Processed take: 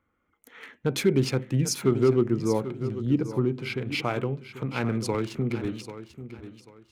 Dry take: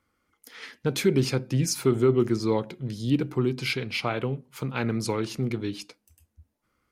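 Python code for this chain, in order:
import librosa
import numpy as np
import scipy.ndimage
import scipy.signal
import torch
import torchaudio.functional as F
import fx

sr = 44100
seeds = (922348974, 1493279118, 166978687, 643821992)

y = fx.wiener(x, sr, points=9)
y = fx.high_shelf(y, sr, hz=2600.0, db=-11.0, at=(2.21, 3.85))
y = fx.echo_feedback(y, sr, ms=790, feedback_pct=27, wet_db=-12.5)
y = fx.band_squash(y, sr, depth_pct=70, at=(5.14, 5.65))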